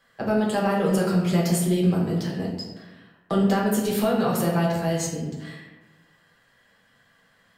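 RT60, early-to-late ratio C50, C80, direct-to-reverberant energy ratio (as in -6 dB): 1.2 s, 2.5 dB, 4.5 dB, -3.5 dB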